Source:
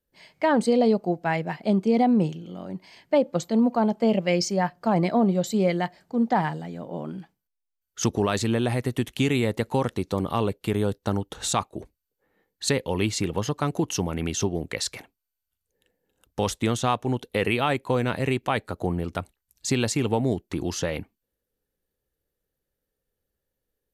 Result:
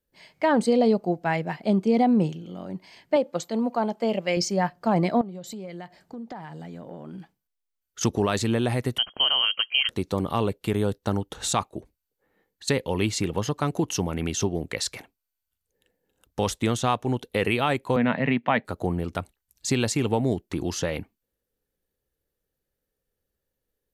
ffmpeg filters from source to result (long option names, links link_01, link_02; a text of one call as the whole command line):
ffmpeg -i in.wav -filter_complex "[0:a]asettb=1/sr,asplit=3[link_01][link_02][link_03];[link_01]atrim=end=3.164[link_04];[link_02]atrim=start=3.16:end=4.37,asetpts=PTS-STARTPTS,afade=type=in:duration=0.004:curve=qsin,afade=type=out:start_time=1.206:duration=0.004:curve=qsin,lowshelf=frequency=240:gain=-11[link_05];[link_03]atrim=start=4.366[link_06];[link_04][link_05]acrossfade=duration=0.004:curve1=hsin:curve2=qsin[link_07];[link_07][link_06]acrossfade=duration=0.004:curve1=qsin:curve2=hsin,asettb=1/sr,asplit=3[link_08][link_09][link_10];[link_08]atrim=end=5.214[link_11];[link_09]atrim=start=5.21:end=8.01,asetpts=PTS-STARTPTS,afade=type=in:duration=0.004:curve=qsin,afade=type=out:start_time=2.796:duration=0.004:curve=qsin,acompressor=threshold=-34dB:ratio=8:attack=3.2:release=140:knee=1:detection=peak[link_12];[link_10]atrim=start=8.006[link_13];[link_11][link_12]acrossfade=duration=0.004:curve1=hsin:curve2=qsin[link_14];[link_14][link_13]acrossfade=duration=0.004:curve1=qsin:curve2=hsin,asettb=1/sr,asplit=3[link_15][link_16][link_17];[link_15]atrim=end=8.984[link_18];[link_16]atrim=start=8.98:end=9.89,asetpts=PTS-STARTPTS,afade=type=in:duration=0.004:curve=qsin,afade=type=out:start_time=0.906:duration=0.004:curve=qsin,lowpass=frequency=2800:width_type=q:width=0.5098,lowpass=frequency=2800:width_type=q:width=0.6013,lowpass=frequency=2800:width_type=q:width=0.9,lowpass=frequency=2800:width_type=q:width=2.563,afreqshift=-3300[link_19];[link_17]atrim=start=9.886[link_20];[link_18][link_19]acrossfade=duration=0.004:curve1=hsin:curve2=qsin[link_21];[link_21][link_20]acrossfade=duration=0.004:curve1=qsin:curve2=hsin,asplit=3[link_22][link_23][link_24];[link_22]afade=type=out:start_time=11.79:duration=0.02[link_25];[link_23]acompressor=threshold=-44dB:ratio=4:attack=3.2:release=140:knee=1:detection=peak,afade=type=in:start_time=11.79:duration=0.02,afade=type=out:start_time=12.67:duration=0.02[link_26];[link_24]afade=type=in:start_time=12.67:duration=0.02[link_27];[link_25][link_26][link_27]amix=inputs=3:normalize=0,asettb=1/sr,asplit=3[link_28][link_29][link_30];[link_28]atrim=end=17.964[link_31];[link_29]atrim=start=17.96:end=18.65,asetpts=PTS-STARTPTS,afade=type=in:duration=0.004:curve=qsin,afade=type=out:start_time=0.686:duration=0.004:curve=qsin,highpass=frequency=140:width=0.5412,highpass=frequency=140:width=1.3066,equalizer=frequency=150:width_type=q:width=4:gain=5,equalizer=frequency=240:width_type=q:width=4:gain=8,equalizer=frequency=360:width_type=q:width=4:gain=-9,equalizer=frequency=650:width_type=q:width=4:gain=4,equalizer=frequency=950:width_type=q:width=4:gain=3,equalizer=frequency=1900:width_type=q:width=4:gain=7,lowpass=frequency=3400:width=0.5412,lowpass=frequency=3400:width=1.3066[link_32];[link_30]atrim=start=18.646[link_33];[link_31][link_32]acrossfade=duration=0.004:curve1=hsin:curve2=qsin[link_34];[link_34][link_33]acrossfade=duration=0.004:curve1=qsin:curve2=hsin" out.wav